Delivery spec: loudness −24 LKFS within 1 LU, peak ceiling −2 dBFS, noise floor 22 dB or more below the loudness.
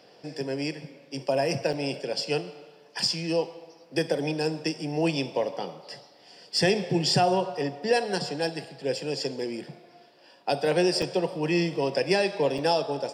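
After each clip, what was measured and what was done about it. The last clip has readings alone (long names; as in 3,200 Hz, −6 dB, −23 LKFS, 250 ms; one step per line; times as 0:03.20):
number of dropouts 3; longest dropout 5.1 ms; integrated loudness −27.5 LKFS; sample peak −10.5 dBFS; target loudness −24.0 LKFS
→ repair the gap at 0:01.73/0:11.02/0:12.58, 5.1 ms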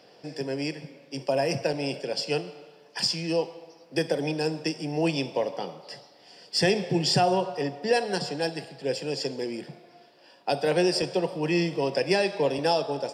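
number of dropouts 0; integrated loudness −27.5 LKFS; sample peak −10.5 dBFS; target loudness −24.0 LKFS
→ level +3.5 dB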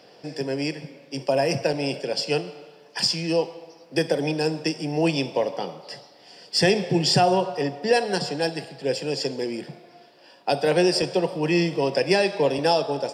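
integrated loudness −24.0 LKFS; sample peak −7.0 dBFS; background noise floor −52 dBFS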